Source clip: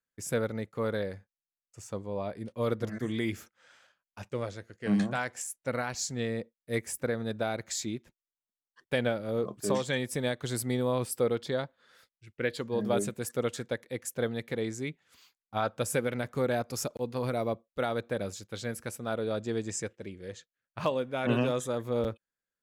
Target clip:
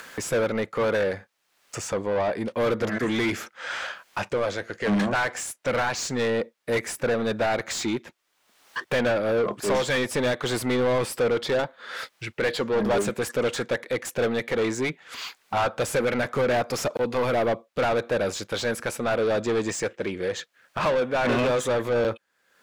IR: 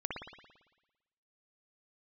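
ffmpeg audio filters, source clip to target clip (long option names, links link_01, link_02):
-filter_complex "[0:a]acompressor=mode=upward:threshold=-34dB:ratio=2.5,asplit=2[link_01][link_02];[link_02]highpass=frequency=720:poles=1,volume=27dB,asoftclip=type=tanh:threshold=-15dB[link_03];[link_01][link_03]amix=inputs=2:normalize=0,lowpass=frequency=2300:poles=1,volume=-6dB"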